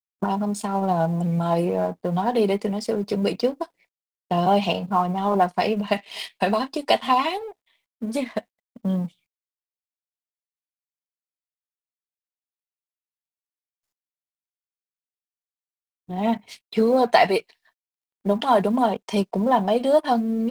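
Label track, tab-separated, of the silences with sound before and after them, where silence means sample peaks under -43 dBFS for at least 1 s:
9.090000	16.090000	silence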